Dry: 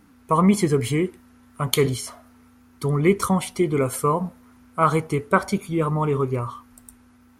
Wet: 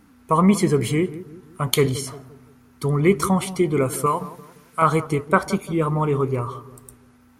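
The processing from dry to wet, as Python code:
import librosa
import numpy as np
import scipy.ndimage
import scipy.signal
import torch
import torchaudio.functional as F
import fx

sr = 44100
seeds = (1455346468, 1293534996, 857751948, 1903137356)

p1 = fx.tilt_shelf(x, sr, db=-8.5, hz=970.0, at=(4.06, 4.82))
p2 = p1 + fx.echo_filtered(p1, sr, ms=173, feedback_pct=45, hz=930.0, wet_db=-14.0, dry=0)
y = F.gain(torch.from_numpy(p2), 1.0).numpy()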